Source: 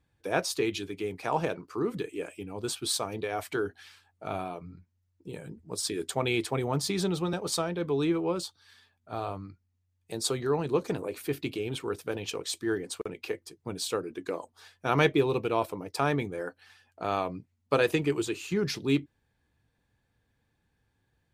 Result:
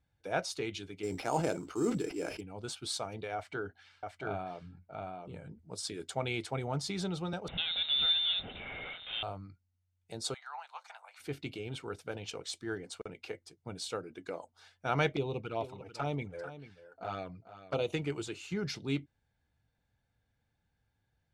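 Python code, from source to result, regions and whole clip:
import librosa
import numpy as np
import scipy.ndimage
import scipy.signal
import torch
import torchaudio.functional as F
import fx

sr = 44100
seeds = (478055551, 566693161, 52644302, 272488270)

y = fx.chain(x, sr, fx.peak_eq(hz=320.0, db=9.5, octaves=0.81),
    fx.sample_hold(seeds[0], rate_hz=7700.0, jitter_pct=0),
    fx.sustainer(db_per_s=74.0), at=(1.03, 2.41))
y = fx.chain(y, sr, fx.lowpass(hz=3100.0, slope=6),
    fx.echo_single(ms=677, db=-3.0), at=(3.35, 5.59))
y = fx.chain(y, sr, fx.zero_step(step_db=-30.5),
    fx.highpass(hz=180.0, slope=24),
    fx.freq_invert(carrier_hz=3900), at=(7.48, 9.23))
y = fx.chain(y, sr, fx.steep_highpass(hz=770.0, slope=48),
    fx.high_shelf(hz=3500.0, db=-7.0), at=(10.34, 11.2))
y = fx.chain(y, sr, fx.env_flanger(rest_ms=8.4, full_db=-22.5),
    fx.high_shelf(hz=10000.0, db=-8.5),
    fx.echo_single(ms=442, db=-13.5), at=(15.16, 17.93))
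y = scipy.signal.sosfilt(scipy.signal.butter(2, 7900.0, 'lowpass', fs=sr, output='sos'), y)
y = y + 0.37 * np.pad(y, (int(1.4 * sr / 1000.0), 0))[:len(y)]
y = y * librosa.db_to_amplitude(-6.0)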